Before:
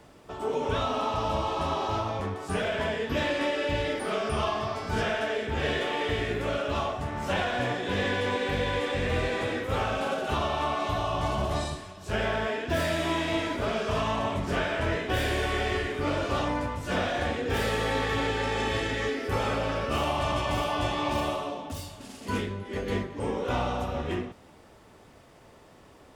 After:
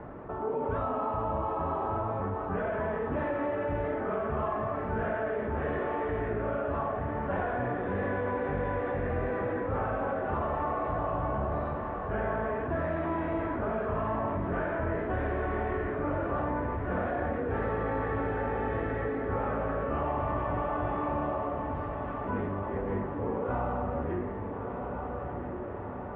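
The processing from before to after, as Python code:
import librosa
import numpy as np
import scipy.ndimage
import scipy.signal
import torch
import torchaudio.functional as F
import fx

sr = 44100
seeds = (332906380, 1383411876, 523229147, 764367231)

y = scipy.signal.sosfilt(scipy.signal.butter(4, 1600.0, 'lowpass', fs=sr, output='sos'), x)
y = fx.echo_diffused(y, sr, ms=1353, feedback_pct=51, wet_db=-9.5)
y = fx.env_flatten(y, sr, amount_pct=50)
y = y * 10.0 ** (-4.5 / 20.0)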